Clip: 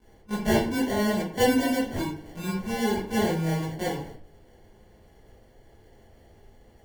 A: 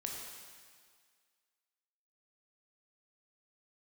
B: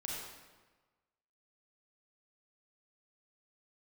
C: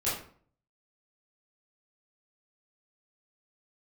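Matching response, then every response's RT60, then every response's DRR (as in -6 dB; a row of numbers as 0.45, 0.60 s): C; 1.9, 1.3, 0.50 s; -1.0, -4.0, -11.0 dB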